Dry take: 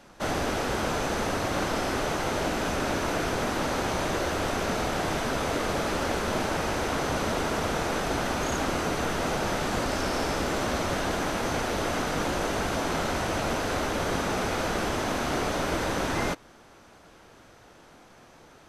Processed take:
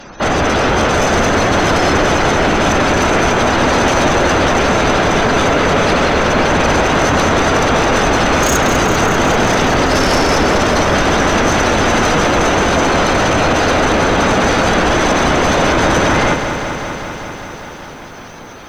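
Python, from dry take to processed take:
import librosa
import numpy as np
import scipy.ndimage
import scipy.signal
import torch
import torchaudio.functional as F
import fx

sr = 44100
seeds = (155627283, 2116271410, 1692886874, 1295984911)

p1 = fx.spec_gate(x, sr, threshold_db=-20, keep='strong')
p2 = fx.high_shelf(p1, sr, hz=4800.0, db=10.0)
p3 = fx.fold_sine(p2, sr, drive_db=11, ceiling_db=-15.0)
p4 = p2 + F.gain(torch.from_numpy(p3), -7.0).numpy()
p5 = fx.echo_crushed(p4, sr, ms=196, feedback_pct=80, bits=9, wet_db=-8.5)
y = F.gain(torch.from_numpy(p5), 7.0).numpy()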